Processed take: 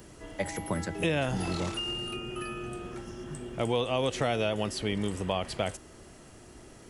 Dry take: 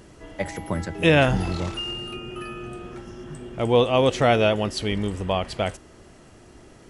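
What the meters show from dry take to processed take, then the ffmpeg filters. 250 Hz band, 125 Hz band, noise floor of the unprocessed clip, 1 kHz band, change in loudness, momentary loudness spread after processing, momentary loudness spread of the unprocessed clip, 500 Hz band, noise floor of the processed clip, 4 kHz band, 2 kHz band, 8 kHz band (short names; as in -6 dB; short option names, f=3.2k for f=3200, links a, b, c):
-7.0 dB, -8.0 dB, -49 dBFS, -8.5 dB, -9.0 dB, 21 LU, 19 LU, -9.0 dB, -51 dBFS, -5.5 dB, -8.5 dB, -1.0 dB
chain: -filter_complex "[0:a]highshelf=f=8.2k:g=10.5,asplit=2[a][b];[b]alimiter=limit=-15dB:level=0:latency=1:release=171,volume=-2dB[c];[a][c]amix=inputs=2:normalize=0,acrossover=split=110|1100|2900[d][e][f][g];[d]acompressor=threshold=-36dB:ratio=4[h];[e]acompressor=threshold=-19dB:ratio=4[i];[f]acompressor=threshold=-30dB:ratio=4[j];[g]acompressor=threshold=-31dB:ratio=4[k];[h][i][j][k]amix=inputs=4:normalize=0,volume=-7.5dB"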